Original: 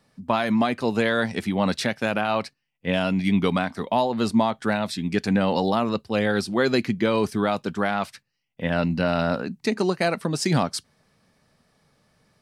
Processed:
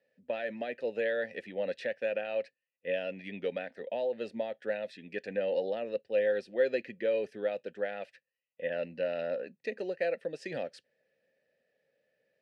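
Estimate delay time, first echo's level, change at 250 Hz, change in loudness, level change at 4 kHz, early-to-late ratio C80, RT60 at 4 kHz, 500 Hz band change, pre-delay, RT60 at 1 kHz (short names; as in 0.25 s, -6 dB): none, none, -21.5 dB, -10.5 dB, -17.5 dB, none, none, -5.5 dB, none, none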